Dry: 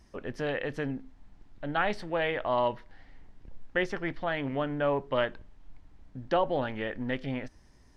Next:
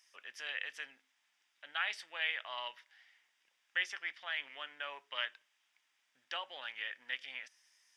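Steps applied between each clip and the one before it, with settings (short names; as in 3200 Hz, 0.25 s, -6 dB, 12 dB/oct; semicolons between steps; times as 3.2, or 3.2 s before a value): Chebyshev high-pass 2600 Hz, order 2; notch 4200 Hz, Q 5.5; gain +2.5 dB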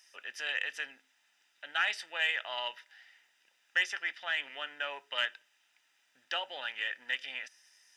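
notch comb 1100 Hz; in parallel at -4 dB: soft clip -30 dBFS, distortion -14 dB; on the sum: gain +3 dB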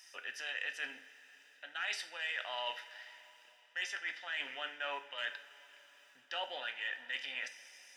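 reverse; compressor 5:1, threshold -41 dBFS, peak gain reduction 16 dB; reverse; two-slope reverb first 0.4 s, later 4.6 s, from -18 dB, DRR 6 dB; gain +3.5 dB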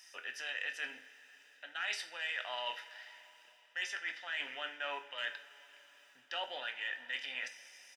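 doubler 24 ms -14 dB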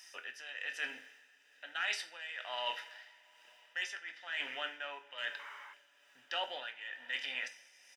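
painted sound noise, 5.39–5.74, 820–2300 Hz -52 dBFS; tremolo 1.1 Hz, depth 65%; gain +2.5 dB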